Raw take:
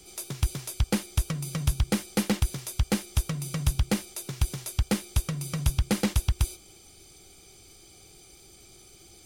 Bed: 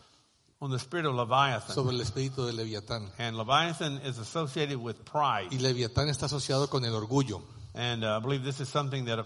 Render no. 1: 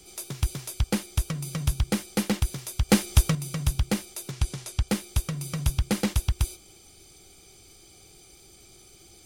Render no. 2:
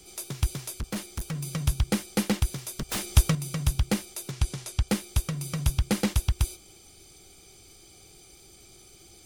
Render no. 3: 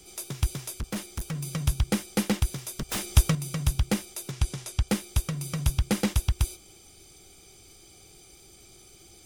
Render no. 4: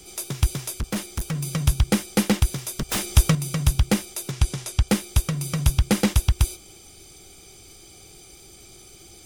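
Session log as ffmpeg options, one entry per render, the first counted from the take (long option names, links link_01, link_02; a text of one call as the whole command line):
ffmpeg -i in.wav -filter_complex "[0:a]asettb=1/sr,asplit=3[link_01][link_02][link_03];[link_01]atrim=end=4.314[link_04];[link_02]atrim=start=4.31:end=4.88,asetpts=PTS-STARTPTS,afade=type=in:duration=0.004:curve=qsin,afade=type=out:start_time=0.566:duration=0.004:curve=qsin,lowpass=10000[link_05];[link_03]atrim=start=4.876[link_06];[link_04][link_05]acrossfade=duration=0.004:curve1=hsin:curve2=qsin[link_07];[link_07][link_06]acrossfade=duration=0.004:curve1=qsin:curve2=hsin,asplit=3[link_08][link_09][link_10];[link_08]atrim=end=2.892[link_11];[link_09]atrim=start=2.888:end=3.352,asetpts=PTS-STARTPTS,volume=7dB[link_12];[link_10]atrim=start=3.348[link_13];[link_11][link_12]acrossfade=duration=0.004:curve1=hsin:curve2=hsin[link_14];[link_14][link_13]acrossfade=duration=0.004:curve1=hsin:curve2=hsin" out.wav
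ffmpeg -i in.wav -filter_complex "[0:a]asettb=1/sr,asplit=3[link_01][link_02][link_03];[link_01]atrim=end=0.794[link_04];[link_02]atrim=start=0.79:end=1.43,asetpts=PTS-STARTPTS,afade=type=in:duration=0.004:curve=qsin,afade=type=out:start_time=0.636:duration=0.004:curve=qsin,volume=28dB,asoftclip=hard,volume=-28dB[link_05];[link_03]atrim=start=1.426[link_06];[link_04][link_05]acrossfade=duration=0.004:curve1=hsin:curve2=qsin[link_07];[link_07][link_06]acrossfade=duration=0.004:curve1=qsin:curve2=hsin,asettb=1/sr,asplit=3[link_08][link_09][link_10];[link_08]atrim=end=2.594[link_11];[link_09]atrim=start=2.59:end=3.06,asetpts=PTS-STARTPTS,afade=type=in:duration=0.004:curve=qsin,afade=type=out:start_time=0.466:duration=0.004:curve=qsin,aeval=exprs='0.0631*(abs(mod(val(0)/0.0631+3,4)-2)-1)':channel_layout=same[link_12];[link_10]atrim=start=3.056[link_13];[link_11][link_12]acrossfade=duration=0.004:curve1=hsin:curve2=qsin[link_14];[link_14][link_13]acrossfade=duration=0.004:curve1=qsin:curve2=hsin" out.wav
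ffmpeg -i in.wav -af "bandreject=frequency=4300:width=19" out.wav
ffmpeg -i in.wav -af "volume=5.5dB,alimiter=limit=-3dB:level=0:latency=1" out.wav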